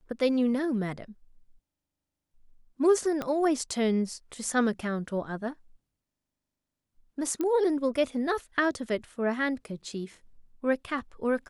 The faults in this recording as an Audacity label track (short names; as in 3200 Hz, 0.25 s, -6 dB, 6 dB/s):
3.220000	3.220000	pop -18 dBFS
7.410000	7.410000	pop -18 dBFS